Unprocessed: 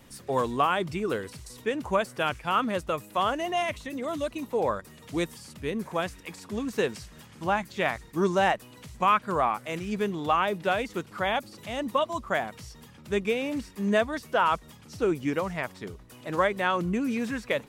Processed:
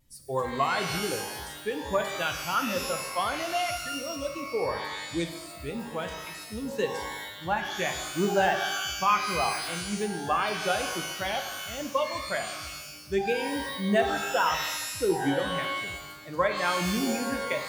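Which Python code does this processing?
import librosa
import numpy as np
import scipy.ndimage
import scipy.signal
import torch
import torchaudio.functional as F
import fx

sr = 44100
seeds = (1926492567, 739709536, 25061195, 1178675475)

y = fx.bin_expand(x, sr, power=1.5)
y = fx.vibrato(y, sr, rate_hz=2.8, depth_cents=64.0)
y = fx.rev_shimmer(y, sr, seeds[0], rt60_s=1.1, semitones=12, shimmer_db=-2, drr_db=5.5)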